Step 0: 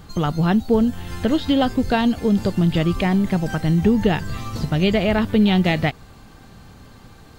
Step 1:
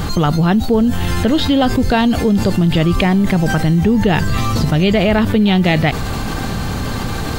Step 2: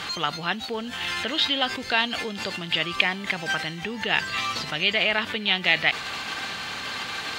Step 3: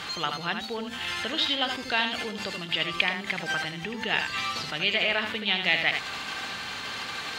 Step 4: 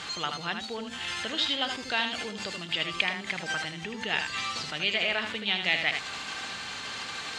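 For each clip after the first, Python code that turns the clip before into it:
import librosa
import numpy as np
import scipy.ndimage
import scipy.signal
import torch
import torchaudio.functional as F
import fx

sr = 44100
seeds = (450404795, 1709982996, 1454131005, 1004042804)

y1 = fx.env_flatten(x, sr, amount_pct=70)
y1 = y1 * librosa.db_to_amplitude(1.5)
y2 = fx.bandpass_q(y1, sr, hz=2700.0, q=1.2)
y2 = y2 * librosa.db_to_amplitude(1.5)
y3 = y2 + 10.0 ** (-6.5 / 20.0) * np.pad(y2, (int(78 * sr / 1000.0), 0))[:len(y2)]
y3 = y3 * librosa.db_to_amplitude(-3.5)
y4 = fx.lowpass_res(y3, sr, hz=8000.0, q=1.8)
y4 = y4 * librosa.db_to_amplitude(-3.0)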